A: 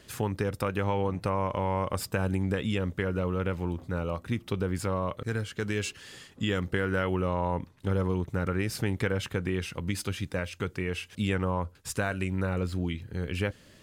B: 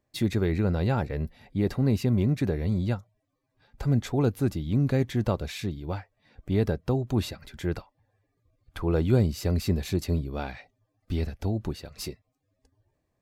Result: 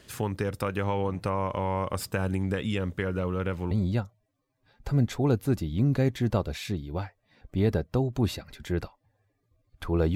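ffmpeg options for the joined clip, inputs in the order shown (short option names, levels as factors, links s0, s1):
-filter_complex "[0:a]apad=whole_dur=10.15,atrim=end=10.15,atrim=end=3.712[s0];[1:a]atrim=start=2.648:end=9.09[s1];[s0][s1]acrossfade=d=0.004:c1=hsin:c2=hsin"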